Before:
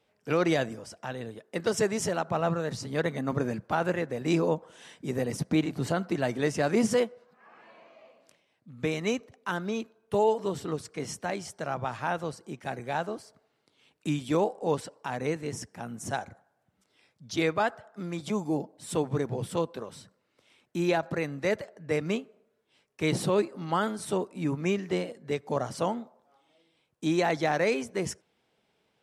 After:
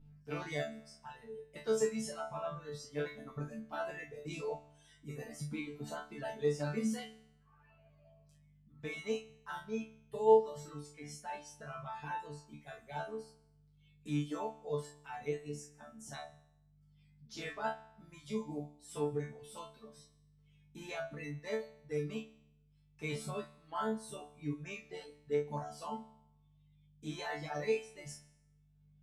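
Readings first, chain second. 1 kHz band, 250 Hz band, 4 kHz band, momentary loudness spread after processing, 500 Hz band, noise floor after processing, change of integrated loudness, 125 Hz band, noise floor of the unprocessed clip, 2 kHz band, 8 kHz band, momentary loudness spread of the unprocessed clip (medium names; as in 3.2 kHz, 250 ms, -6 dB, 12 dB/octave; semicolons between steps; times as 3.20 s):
-9.5 dB, -12.0 dB, -11.0 dB, 15 LU, -8.0 dB, -68 dBFS, -9.0 dB, -10.5 dB, -74 dBFS, -11.0 dB, -10.5 dB, 11 LU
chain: hum 50 Hz, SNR 12 dB; chord resonator D3 fifth, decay 0.78 s; reverb removal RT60 1.9 s; trim +8.5 dB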